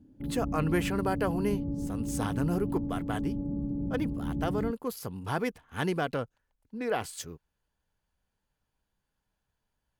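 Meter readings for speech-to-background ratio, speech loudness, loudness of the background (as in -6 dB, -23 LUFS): 1.0 dB, -33.5 LUFS, -34.5 LUFS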